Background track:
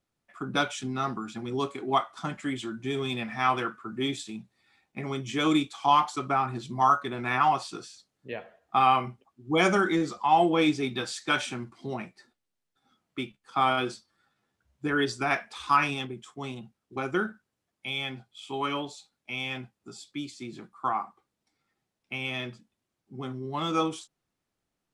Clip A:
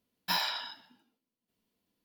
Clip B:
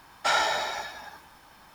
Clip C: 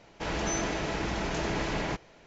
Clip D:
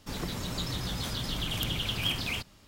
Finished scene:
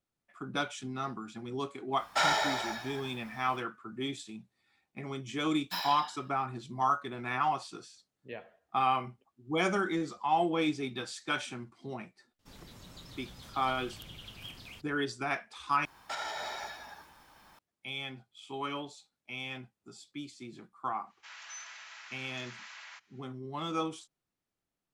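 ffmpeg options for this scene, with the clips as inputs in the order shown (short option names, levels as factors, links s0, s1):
-filter_complex "[2:a]asplit=2[s0][s1];[0:a]volume=0.473[s2];[4:a]bandreject=f=60:t=h:w=6,bandreject=f=120:t=h:w=6,bandreject=f=180:t=h:w=6,bandreject=f=240:t=h:w=6,bandreject=f=300:t=h:w=6,bandreject=f=360:t=h:w=6,bandreject=f=420:t=h:w=6,bandreject=f=480:t=h:w=6[s3];[s1]alimiter=limit=0.0794:level=0:latency=1:release=290[s4];[3:a]highpass=f=1200:w=0.5412,highpass=f=1200:w=1.3066[s5];[s2]asplit=2[s6][s7];[s6]atrim=end=15.854[s8];[s4]atrim=end=1.74,asetpts=PTS-STARTPTS,volume=0.531[s9];[s7]atrim=start=17.586[s10];[s0]atrim=end=1.74,asetpts=PTS-STARTPTS,volume=0.708,afade=t=in:d=0.1,afade=t=out:st=1.64:d=0.1,adelay=1910[s11];[1:a]atrim=end=2.04,asetpts=PTS-STARTPTS,volume=0.501,afade=t=in:d=0.004:c=hsin,afade=t=out:st=2.036:d=0.004:c=hsin,adelay=5430[s12];[s3]atrim=end=2.67,asetpts=PTS-STARTPTS,volume=0.158,afade=t=in:d=0.004:c=hsin,afade=t=out:st=2.666:d=0.004:c=hsin,adelay=12390[s13];[s5]atrim=end=2.26,asetpts=PTS-STARTPTS,volume=0.282,afade=t=in:d=0.1,afade=t=out:st=2.16:d=0.1,adelay=21030[s14];[s8][s9]acrossfade=d=0.004:c1=hsin:c2=hsin[s15];[s15][s10]acrossfade=d=0.004:c1=hsin:c2=hsin[s16];[s16][s11][s12][s13][s14]amix=inputs=5:normalize=0"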